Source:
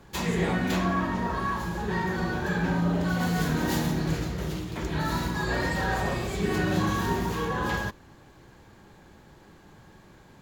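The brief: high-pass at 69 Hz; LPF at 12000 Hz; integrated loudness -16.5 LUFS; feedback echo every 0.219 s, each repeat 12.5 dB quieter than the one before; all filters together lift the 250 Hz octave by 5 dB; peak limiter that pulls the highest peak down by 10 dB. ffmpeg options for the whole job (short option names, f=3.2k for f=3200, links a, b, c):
-af "highpass=69,lowpass=12k,equalizer=f=250:t=o:g=7.5,alimiter=limit=-20dB:level=0:latency=1,aecho=1:1:219|438|657:0.237|0.0569|0.0137,volume=12dB"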